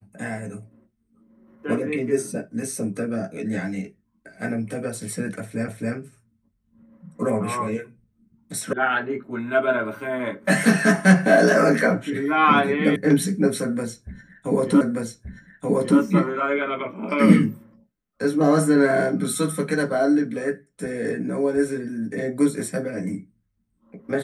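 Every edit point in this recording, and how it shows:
0:05.68: the same again, the last 0.27 s
0:08.73: cut off before it has died away
0:12.96: cut off before it has died away
0:14.81: the same again, the last 1.18 s

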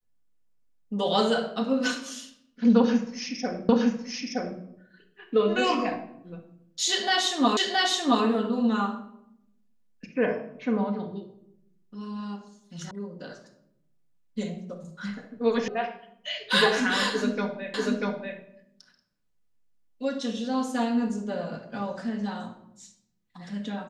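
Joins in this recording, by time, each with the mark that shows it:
0:03.69: the same again, the last 0.92 s
0:07.57: the same again, the last 0.67 s
0:12.91: cut off before it has died away
0:15.68: cut off before it has died away
0:17.74: the same again, the last 0.64 s

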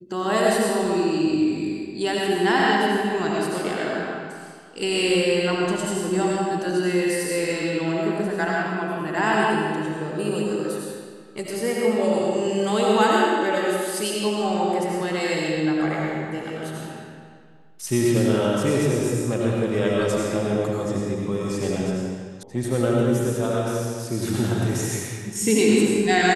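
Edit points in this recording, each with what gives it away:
0:22.43: cut off before it has died away

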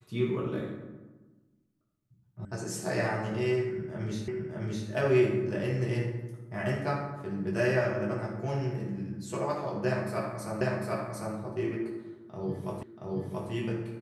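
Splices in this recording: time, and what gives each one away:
0:02.45: cut off before it has died away
0:04.28: the same again, the last 0.61 s
0:10.61: the same again, the last 0.75 s
0:12.83: the same again, the last 0.68 s

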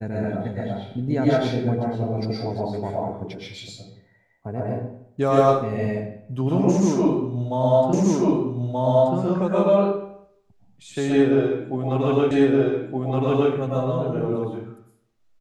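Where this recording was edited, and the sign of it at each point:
0:07.93: the same again, the last 1.23 s
0:12.31: the same again, the last 1.22 s

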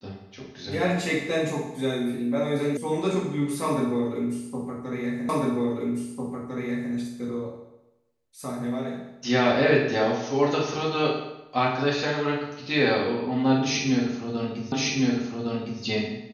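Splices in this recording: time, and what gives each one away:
0:02.77: cut off before it has died away
0:05.29: the same again, the last 1.65 s
0:14.72: the same again, the last 1.11 s

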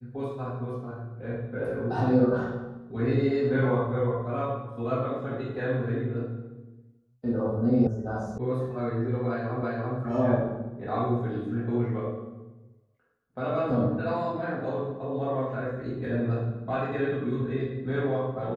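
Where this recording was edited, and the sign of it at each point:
0:07.87: cut off before it has died away
0:08.38: cut off before it has died away
0:09.63: the same again, the last 0.34 s

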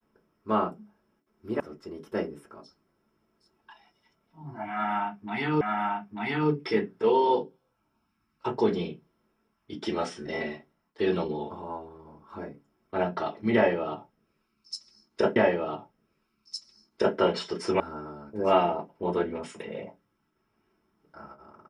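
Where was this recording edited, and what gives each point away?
0:01.60: cut off before it has died away
0:05.61: the same again, the last 0.89 s
0:15.36: the same again, the last 1.81 s
0:17.80: cut off before it has died away

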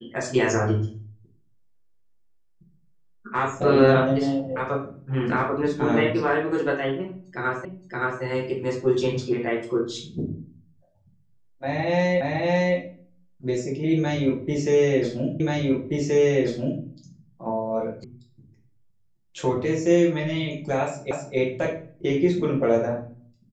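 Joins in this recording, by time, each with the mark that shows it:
0:07.65: the same again, the last 0.57 s
0:12.21: the same again, the last 0.56 s
0:15.40: the same again, the last 1.43 s
0:18.04: cut off before it has died away
0:21.11: the same again, the last 0.26 s

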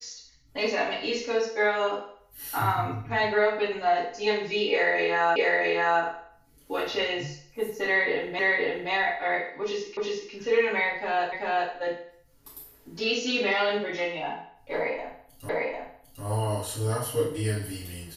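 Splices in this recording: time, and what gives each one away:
0:05.36: the same again, the last 0.66 s
0:08.39: the same again, the last 0.52 s
0:09.97: the same again, the last 0.36 s
0:11.32: the same again, the last 0.39 s
0:15.49: the same again, the last 0.75 s

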